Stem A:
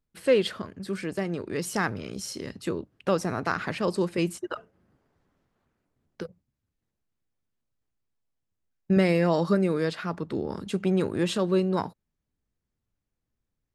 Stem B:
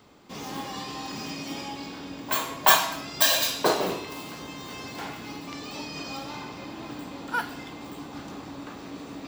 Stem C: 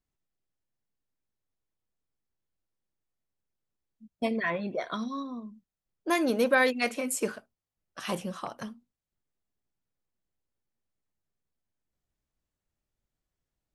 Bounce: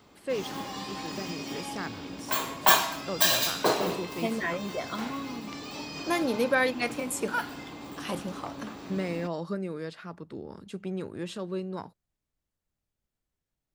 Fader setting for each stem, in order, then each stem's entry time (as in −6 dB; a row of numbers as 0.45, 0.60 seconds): −10.0, −2.0, −1.5 decibels; 0.00, 0.00, 0.00 seconds